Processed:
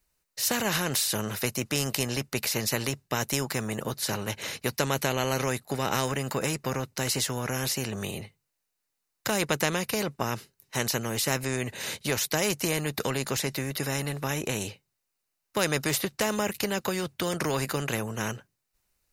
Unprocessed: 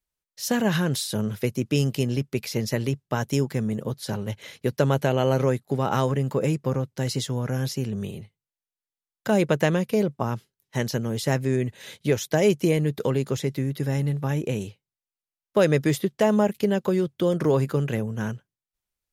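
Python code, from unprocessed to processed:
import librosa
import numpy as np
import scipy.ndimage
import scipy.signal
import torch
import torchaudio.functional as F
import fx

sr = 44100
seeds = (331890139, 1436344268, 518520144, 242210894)

y = fx.notch(x, sr, hz=3300.0, q=7.6)
y = fx.spectral_comp(y, sr, ratio=2.0)
y = F.gain(torch.from_numpy(y), -1.5).numpy()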